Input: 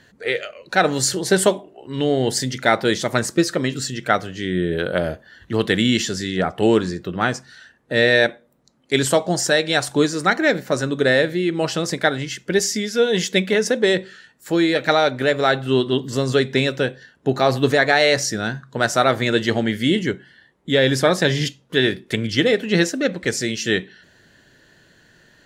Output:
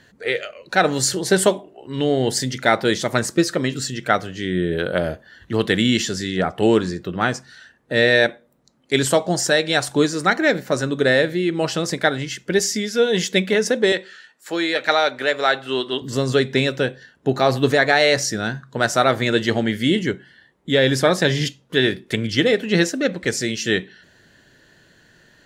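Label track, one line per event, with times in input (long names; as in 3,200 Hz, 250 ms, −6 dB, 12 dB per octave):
13.920000	16.020000	meter weighting curve A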